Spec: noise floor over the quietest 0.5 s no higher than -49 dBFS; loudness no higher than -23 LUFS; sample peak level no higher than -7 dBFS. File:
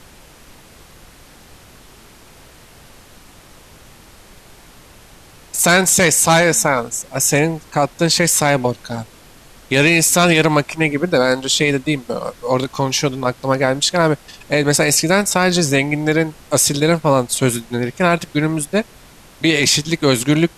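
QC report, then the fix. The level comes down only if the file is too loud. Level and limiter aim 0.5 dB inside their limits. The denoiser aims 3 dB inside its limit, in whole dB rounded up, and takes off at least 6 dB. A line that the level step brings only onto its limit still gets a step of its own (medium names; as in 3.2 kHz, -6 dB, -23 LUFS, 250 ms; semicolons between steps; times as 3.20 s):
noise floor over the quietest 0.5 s -44 dBFS: fail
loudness -15.5 LUFS: fail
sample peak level -3.5 dBFS: fail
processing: trim -8 dB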